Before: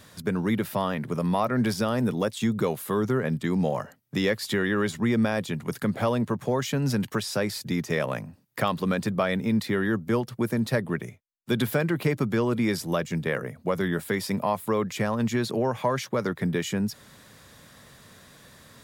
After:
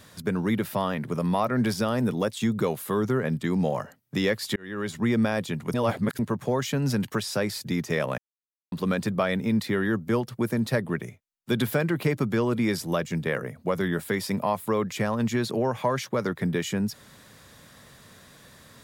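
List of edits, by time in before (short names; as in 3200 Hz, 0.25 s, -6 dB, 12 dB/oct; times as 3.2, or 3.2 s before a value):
4.56–5.04 fade in
5.74–6.19 reverse
8.18–8.72 mute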